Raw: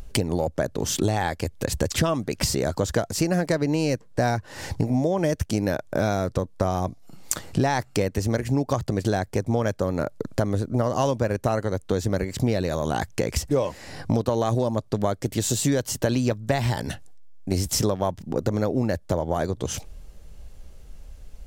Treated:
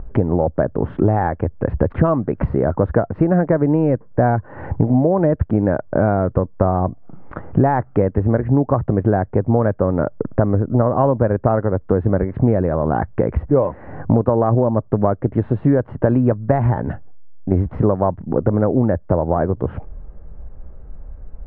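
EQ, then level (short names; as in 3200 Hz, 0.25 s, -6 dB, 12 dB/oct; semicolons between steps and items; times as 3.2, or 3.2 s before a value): LPF 1500 Hz 24 dB/oct; air absorption 300 m; +8.0 dB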